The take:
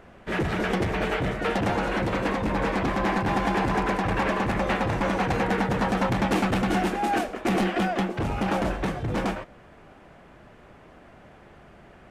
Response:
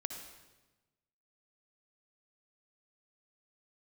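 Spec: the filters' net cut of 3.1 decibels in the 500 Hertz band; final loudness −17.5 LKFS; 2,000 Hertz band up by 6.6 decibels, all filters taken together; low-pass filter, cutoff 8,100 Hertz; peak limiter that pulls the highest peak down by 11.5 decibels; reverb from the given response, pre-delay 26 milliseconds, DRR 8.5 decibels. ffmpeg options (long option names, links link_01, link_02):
-filter_complex "[0:a]lowpass=8100,equalizer=frequency=500:width_type=o:gain=-4.5,equalizer=frequency=2000:width_type=o:gain=8.5,alimiter=limit=-22dB:level=0:latency=1,asplit=2[link_01][link_02];[1:a]atrim=start_sample=2205,adelay=26[link_03];[link_02][link_03]afir=irnorm=-1:irlink=0,volume=-8dB[link_04];[link_01][link_04]amix=inputs=2:normalize=0,volume=11.5dB"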